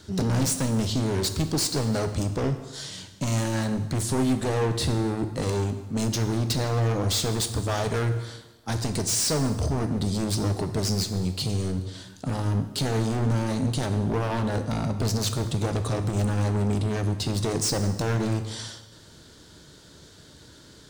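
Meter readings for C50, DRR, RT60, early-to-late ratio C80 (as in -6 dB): 10.0 dB, 7.5 dB, 1.2 s, 12.0 dB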